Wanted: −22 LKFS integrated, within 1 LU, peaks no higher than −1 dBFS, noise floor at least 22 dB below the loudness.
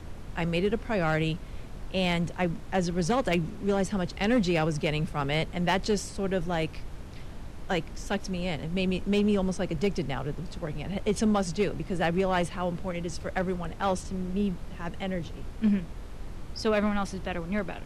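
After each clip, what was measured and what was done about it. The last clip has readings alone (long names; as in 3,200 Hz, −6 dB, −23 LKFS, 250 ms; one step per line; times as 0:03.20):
share of clipped samples 0.5%; peaks flattened at −18.0 dBFS; background noise floor −41 dBFS; target noise floor −52 dBFS; integrated loudness −29.5 LKFS; sample peak −18.0 dBFS; target loudness −22.0 LKFS
→ clipped peaks rebuilt −18 dBFS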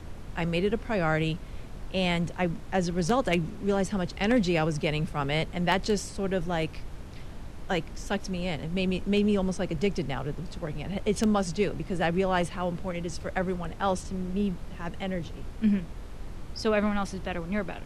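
share of clipped samples 0.0%; background noise floor −41 dBFS; target noise floor −51 dBFS
→ noise reduction from a noise print 10 dB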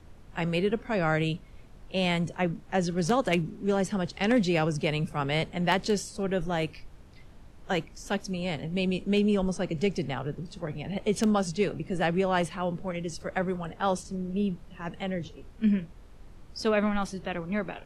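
background noise floor −50 dBFS; target noise floor −51 dBFS
→ noise reduction from a noise print 6 dB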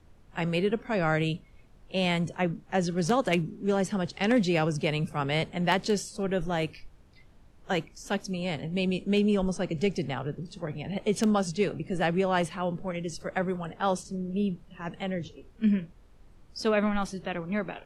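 background noise floor −55 dBFS; integrated loudness −29.0 LKFS; sample peak −9.0 dBFS; target loudness −22.0 LKFS
→ level +7 dB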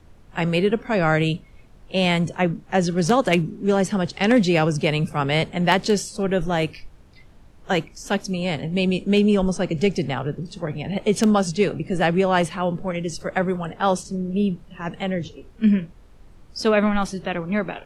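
integrated loudness −22.0 LKFS; sample peak −2.0 dBFS; background noise floor −48 dBFS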